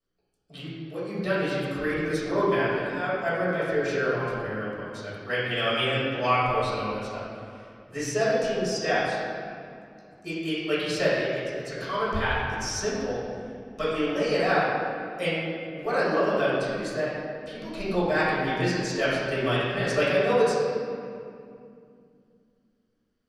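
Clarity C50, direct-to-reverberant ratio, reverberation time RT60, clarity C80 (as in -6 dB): -2.5 dB, -10.5 dB, 2.5 s, 0.0 dB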